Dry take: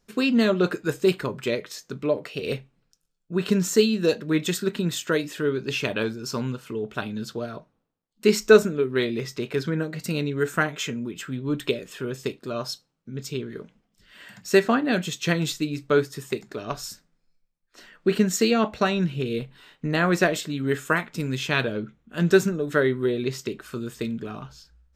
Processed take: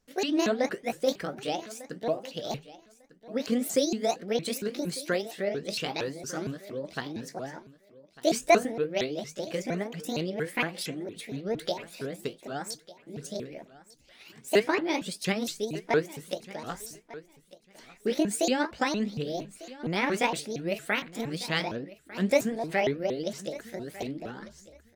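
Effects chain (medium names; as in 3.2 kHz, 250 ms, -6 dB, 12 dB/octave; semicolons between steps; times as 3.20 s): sawtooth pitch modulation +8.5 st, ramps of 231 ms; feedback delay 1199 ms, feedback 17%, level -18.5 dB; trim -4.5 dB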